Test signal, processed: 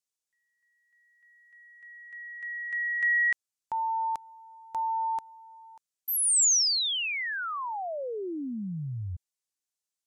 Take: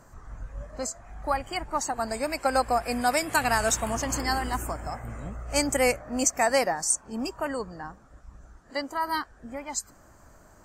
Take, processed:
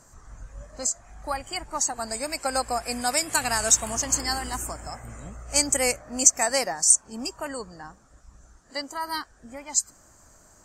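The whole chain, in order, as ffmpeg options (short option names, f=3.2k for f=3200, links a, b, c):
-af "equalizer=f=7.1k:t=o:w=1.6:g=12.5,volume=-3.5dB"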